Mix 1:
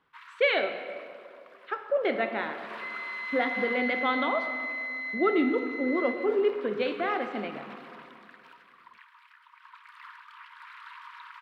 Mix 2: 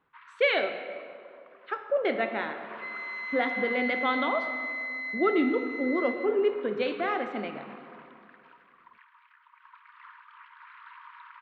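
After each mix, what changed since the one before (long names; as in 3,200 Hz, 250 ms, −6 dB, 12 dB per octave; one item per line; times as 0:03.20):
first sound: add high-frequency loss of the air 390 metres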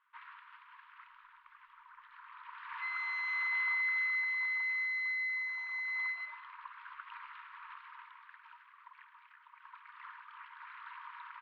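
speech: muted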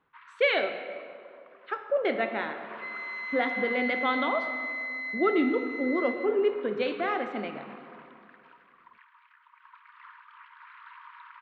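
speech: unmuted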